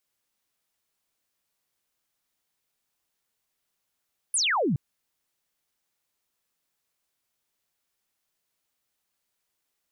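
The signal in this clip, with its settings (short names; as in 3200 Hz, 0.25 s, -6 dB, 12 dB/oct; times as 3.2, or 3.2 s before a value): laser zap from 11000 Hz, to 120 Hz, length 0.42 s sine, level -21.5 dB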